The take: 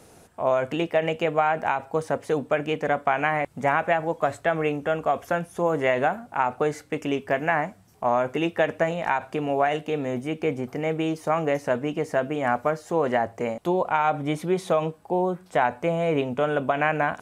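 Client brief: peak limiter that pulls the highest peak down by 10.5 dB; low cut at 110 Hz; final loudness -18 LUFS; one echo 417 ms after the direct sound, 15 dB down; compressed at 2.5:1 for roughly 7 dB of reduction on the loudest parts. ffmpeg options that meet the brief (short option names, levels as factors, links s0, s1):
-af "highpass=110,acompressor=threshold=0.0398:ratio=2.5,alimiter=limit=0.075:level=0:latency=1,aecho=1:1:417:0.178,volume=6.31"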